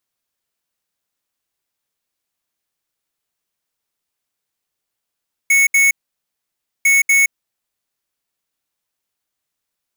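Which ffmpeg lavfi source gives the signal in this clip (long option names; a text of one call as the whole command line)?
ffmpeg -f lavfi -i "aevalsrc='0.251*(2*lt(mod(2210*t,1),0.5)-1)*clip(min(mod(mod(t,1.35),0.24),0.17-mod(mod(t,1.35),0.24))/0.005,0,1)*lt(mod(t,1.35),0.48)':duration=2.7:sample_rate=44100" out.wav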